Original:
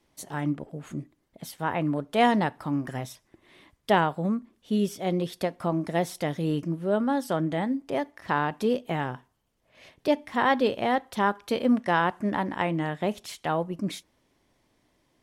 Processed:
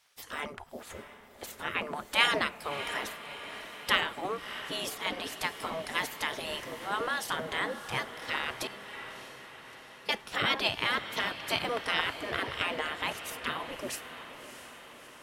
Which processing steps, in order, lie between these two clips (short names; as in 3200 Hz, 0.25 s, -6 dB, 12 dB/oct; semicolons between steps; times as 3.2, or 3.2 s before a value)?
spectral gate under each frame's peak -15 dB weak; 8.67–10.09 metallic resonator 200 Hz, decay 0.72 s, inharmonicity 0.008; diffused feedback echo 0.643 s, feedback 61%, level -11.5 dB; gain +7.5 dB